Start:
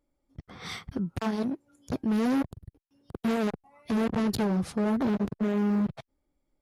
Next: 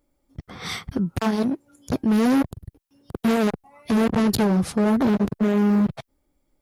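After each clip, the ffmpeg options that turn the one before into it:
ffmpeg -i in.wav -af "highshelf=frequency=9100:gain=6.5,volume=7dB" out.wav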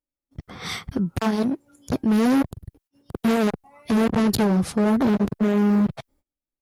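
ffmpeg -i in.wav -af "agate=range=-25dB:threshold=-58dB:ratio=16:detection=peak" out.wav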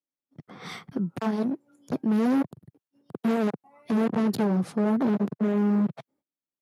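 ffmpeg -i in.wav -af "highpass=frequency=140:width=0.5412,highpass=frequency=140:width=1.3066,highshelf=frequency=2400:gain=-9.5,volume=-4dB" out.wav

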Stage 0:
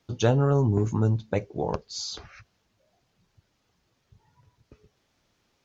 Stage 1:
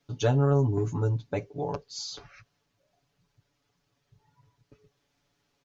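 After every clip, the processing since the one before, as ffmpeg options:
ffmpeg -i in.wav -af "aecho=1:1:7:0.99,volume=-6.5dB" out.wav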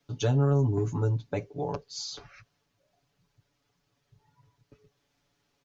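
ffmpeg -i in.wav -filter_complex "[0:a]acrossover=split=320|3000[link_01][link_02][link_03];[link_02]acompressor=threshold=-28dB:ratio=6[link_04];[link_01][link_04][link_03]amix=inputs=3:normalize=0" out.wav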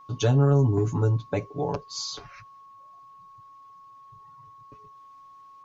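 ffmpeg -i in.wav -af "aeval=exprs='val(0)+0.00282*sin(2*PI*1100*n/s)':channel_layout=same,volume=4dB" out.wav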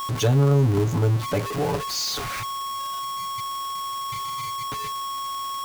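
ffmpeg -i in.wav -af "aeval=exprs='val(0)+0.5*0.0562*sgn(val(0))':channel_layout=same" out.wav

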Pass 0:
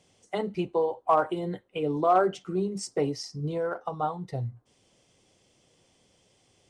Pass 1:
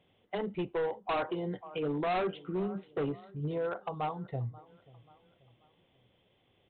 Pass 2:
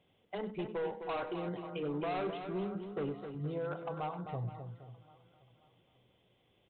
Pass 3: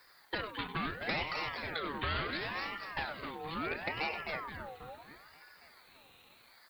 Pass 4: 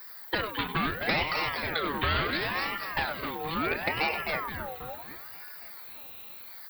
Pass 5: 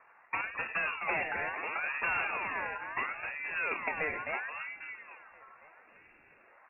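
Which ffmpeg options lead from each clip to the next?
ffmpeg -i in.wav -af "aecho=1:1:535|1070|1605:0.075|0.033|0.0145,aresample=8000,asoftclip=type=hard:threshold=-24.5dB,aresample=44100,volume=-3.5dB" out.wav
ffmpeg -i in.wav -af "bandreject=frequency=1800:width=25,alimiter=level_in=5.5dB:limit=-24dB:level=0:latency=1:release=99,volume=-5.5dB,aecho=1:1:97|260|471:0.2|0.398|0.178,volume=-2.5dB" out.wav
ffmpeg -i in.wav -filter_complex "[0:a]acrossover=split=620|1500[link_01][link_02][link_03];[link_01]acompressor=threshold=-50dB:ratio=4[link_04];[link_02]acompressor=threshold=-43dB:ratio=4[link_05];[link_03]acompressor=threshold=-52dB:ratio=4[link_06];[link_04][link_05][link_06]amix=inputs=3:normalize=0,crystalizer=i=6:c=0,aeval=exprs='val(0)*sin(2*PI*1100*n/s+1100*0.45/0.73*sin(2*PI*0.73*n/s))':channel_layout=same,volume=8dB" out.wav
ffmpeg -i in.wav -af "aexciter=amount=5.4:drive=5.8:freq=11000,volume=7.5dB" out.wav
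ffmpeg -i in.wav -af "lowpass=frequency=2400:width_type=q:width=0.5098,lowpass=frequency=2400:width_type=q:width=0.6013,lowpass=frequency=2400:width_type=q:width=0.9,lowpass=frequency=2400:width_type=q:width=2.563,afreqshift=-2800,volume=-4dB" out.wav

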